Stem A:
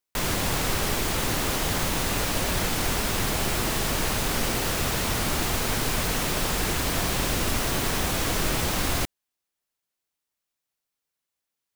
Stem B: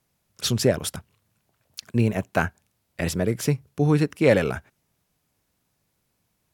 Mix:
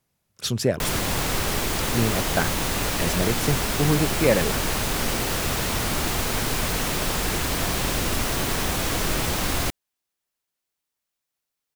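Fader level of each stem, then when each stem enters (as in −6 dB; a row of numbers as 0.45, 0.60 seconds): +1.0, −2.0 decibels; 0.65, 0.00 seconds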